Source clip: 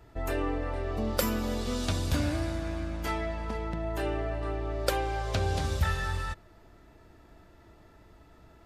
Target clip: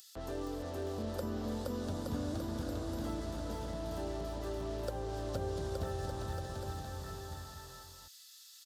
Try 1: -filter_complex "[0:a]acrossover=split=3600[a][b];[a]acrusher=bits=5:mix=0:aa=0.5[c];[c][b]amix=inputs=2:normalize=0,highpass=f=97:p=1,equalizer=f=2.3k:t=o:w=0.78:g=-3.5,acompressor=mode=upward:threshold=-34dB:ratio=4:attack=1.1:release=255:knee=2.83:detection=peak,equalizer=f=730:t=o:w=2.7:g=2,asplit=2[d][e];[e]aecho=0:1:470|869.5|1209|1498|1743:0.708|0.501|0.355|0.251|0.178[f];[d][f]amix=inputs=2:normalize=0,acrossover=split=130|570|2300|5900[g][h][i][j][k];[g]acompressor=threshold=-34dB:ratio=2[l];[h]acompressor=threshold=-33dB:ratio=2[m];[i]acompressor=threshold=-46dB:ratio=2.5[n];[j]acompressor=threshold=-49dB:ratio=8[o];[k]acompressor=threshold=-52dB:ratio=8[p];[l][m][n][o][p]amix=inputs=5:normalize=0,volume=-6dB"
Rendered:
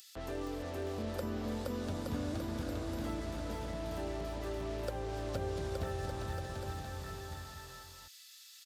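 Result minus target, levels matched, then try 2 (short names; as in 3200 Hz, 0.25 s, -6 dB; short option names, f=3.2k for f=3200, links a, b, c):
2000 Hz band +3.5 dB
-filter_complex "[0:a]acrossover=split=3600[a][b];[a]acrusher=bits=5:mix=0:aa=0.5[c];[c][b]amix=inputs=2:normalize=0,highpass=f=97:p=1,equalizer=f=2.3k:t=o:w=0.78:g=-13.5,acompressor=mode=upward:threshold=-34dB:ratio=4:attack=1.1:release=255:knee=2.83:detection=peak,equalizer=f=730:t=o:w=2.7:g=2,asplit=2[d][e];[e]aecho=0:1:470|869.5|1209|1498|1743:0.708|0.501|0.355|0.251|0.178[f];[d][f]amix=inputs=2:normalize=0,acrossover=split=130|570|2300|5900[g][h][i][j][k];[g]acompressor=threshold=-34dB:ratio=2[l];[h]acompressor=threshold=-33dB:ratio=2[m];[i]acompressor=threshold=-46dB:ratio=2.5[n];[j]acompressor=threshold=-49dB:ratio=8[o];[k]acompressor=threshold=-52dB:ratio=8[p];[l][m][n][o][p]amix=inputs=5:normalize=0,volume=-6dB"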